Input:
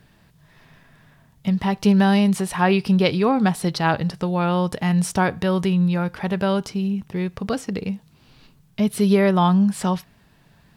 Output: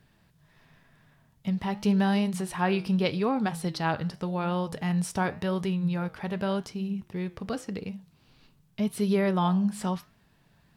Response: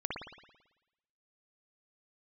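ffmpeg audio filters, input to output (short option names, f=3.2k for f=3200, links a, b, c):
-af "flanger=delay=7.2:depth=6.1:regen=-84:speed=0.88:shape=triangular,volume=-3.5dB"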